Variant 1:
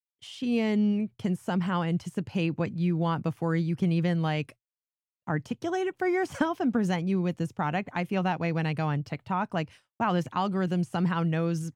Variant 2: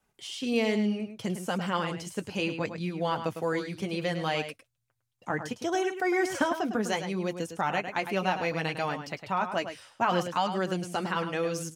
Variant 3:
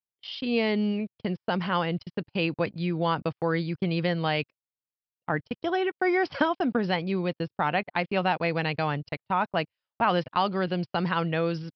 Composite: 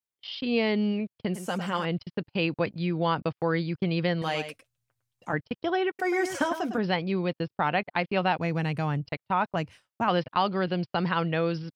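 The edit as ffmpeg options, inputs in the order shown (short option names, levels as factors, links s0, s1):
-filter_complex "[1:a]asplit=3[s0][s1][s2];[0:a]asplit=2[s3][s4];[2:a]asplit=6[s5][s6][s7][s8][s9][s10];[s5]atrim=end=1.342[s11];[s0]atrim=start=1.338:end=1.852[s12];[s6]atrim=start=1.848:end=4.222[s13];[s1]atrim=start=4.218:end=5.332[s14];[s7]atrim=start=5.328:end=5.992[s15];[s2]atrim=start=5.988:end=6.782[s16];[s8]atrim=start=6.778:end=8.392[s17];[s3]atrim=start=8.388:end=9.062[s18];[s9]atrim=start=9.058:end=9.562[s19];[s4]atrim=start=9.558:end=10.082[s20];[s10]atrim=start=10.078[s21];[s11][s12]acrossfade=d=0.004:c1=hsin:c2=hsin[s22];[s22][s13]acrossfade=d=0.004:c1=hsin:c2=hsin[s23];[s23][s14]acrossfade=d=0.004:c1=hsin:c2=hsin[s24];[s24][s15]acrossfade=d=0.004:c1=hsin:c2=hsin[s25];[s25][s16]acrossfade=d=0.004:c1=hsin:c2=hsin[s26];[s26][s17]acrossfade=d=0.004:c1=hsin:c2=hsin[s27];[s27][s18]acrossfade=d=0.004:c1=hsin:c2=hsin[s28];[s28][s19]acrossfade=d=0.004:c1=hsin:c2=hsin[s29];[s29][s20]acrossfade=d=0.004:c1=hsin:c2=hsin[s30];[s30][s21]acrossfade=d=0.004:c1=hsin:c2=hsin"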